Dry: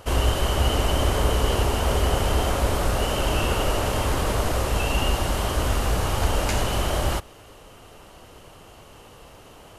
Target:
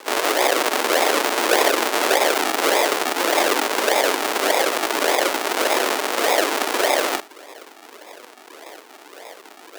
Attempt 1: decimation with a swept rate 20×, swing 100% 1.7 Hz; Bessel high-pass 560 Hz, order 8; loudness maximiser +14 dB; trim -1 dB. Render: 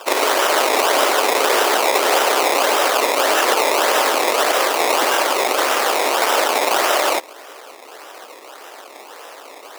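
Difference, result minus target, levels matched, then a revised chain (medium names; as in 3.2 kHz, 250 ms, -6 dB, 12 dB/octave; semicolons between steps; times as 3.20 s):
decimation with a swept rate: distortion -4 dB
decimation with a swept rate 59×, swing 100% 1.7 Hz; Bessel high-pass 560 Hz, order 8; loudness maximiser +14 dB; trim -1 dB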